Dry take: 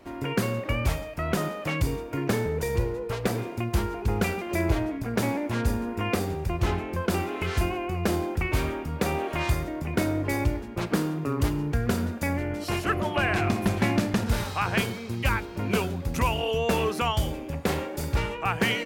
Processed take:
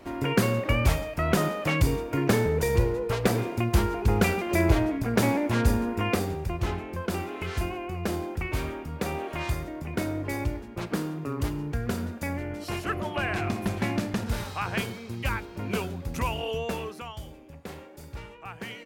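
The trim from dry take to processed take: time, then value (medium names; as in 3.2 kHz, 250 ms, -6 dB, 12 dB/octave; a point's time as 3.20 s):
5.79 s +3 dB
6.74 s -4 dB
16.55 s -4 dB
17.08 s -14 dB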